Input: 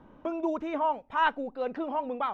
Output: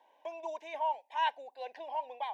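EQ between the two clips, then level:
four-pole ladder high-pass 610 Hz, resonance 35%
Butterworth band-reject 1,300 Hz, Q 1.8
high-shelf EQ 2,500 Hz +11 dB
0.0 dB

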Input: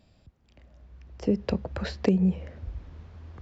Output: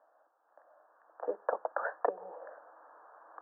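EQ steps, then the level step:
Chebyshev band-pass filter 330–1,700 Hz, order 5
spectral tilt +2.5 dB per octave
phaser with its sweep stopped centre 910 Hz, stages 4
+8.5 dB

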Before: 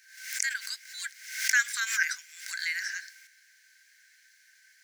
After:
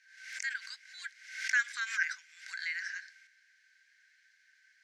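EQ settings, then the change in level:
high-frequency loss of the air 65 metres
high-shelf EQ 6,300 Hz −10.5 dB
−3.0 dB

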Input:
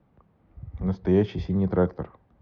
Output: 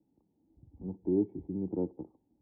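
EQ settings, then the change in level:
formant resonators in series u
parametric band 400 Hz +6.5 dB 2.3 octaves
−5.5 dB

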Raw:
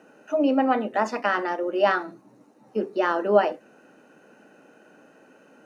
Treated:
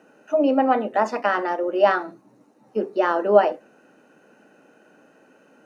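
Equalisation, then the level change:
dynamic equaliser 650 Hz, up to +5 dB, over −34 dBFS, Q 0.7
−1.0 dB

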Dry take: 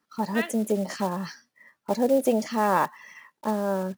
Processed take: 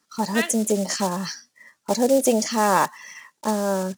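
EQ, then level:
parametric band 7,000 Hz +12.5 dB 1.6 octaves
+3.0 dB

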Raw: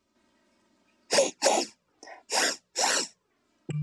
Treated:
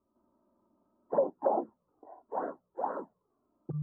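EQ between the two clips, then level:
elliptic low-pass filter 1,200 Hz, stop band 50 dB
−3.0 dB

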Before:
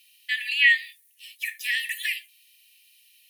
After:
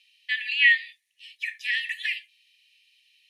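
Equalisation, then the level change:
low-pass filter 4,300 Hz 12 dB per octave
0.0 dB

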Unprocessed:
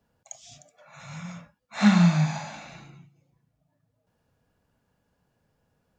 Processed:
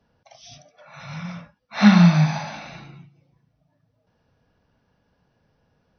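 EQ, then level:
linear-phase brick-wall low-pass 6,200 Hz
+5.5 dB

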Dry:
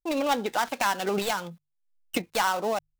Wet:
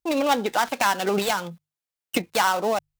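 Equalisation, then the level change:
high-pass filter 44 Hz
+4.0 dB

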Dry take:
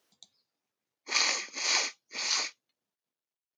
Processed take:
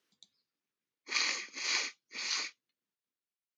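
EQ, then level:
high-pass filter 200 Hz 6 dB per octave
parametric band 710 Hz −12.5 dB 1.2 octaves
high-shelf EQ 5,000 Hz −11.5 dB
0.0 dB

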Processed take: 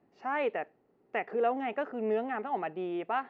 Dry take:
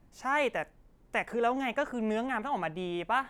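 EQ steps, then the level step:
high-frequency loss of the air 140 metres
loudspeaker in its box 310–6,800 Hz, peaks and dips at 410 Hz +9 dB, 760 Hz +8 dB, 1,300 Hz +7 dB, 1,900 Hz +9 dB, 2,700 Hz +9 dB, 4,400 Hz +9 dB
tilt shelving filter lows +9 dB, about 690 Hz
−5.5 dB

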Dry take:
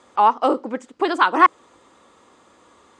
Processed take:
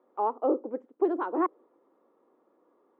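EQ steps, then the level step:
dynamic equaliser 420 Hz, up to +6 dB, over −32 dBFS, Q 0.88
four-pole ladder band-pass 440 Hz, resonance 30%
0.0 dB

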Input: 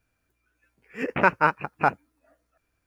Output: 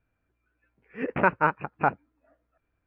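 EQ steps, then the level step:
high-frequency loss of the air 450 metres
0.0 dB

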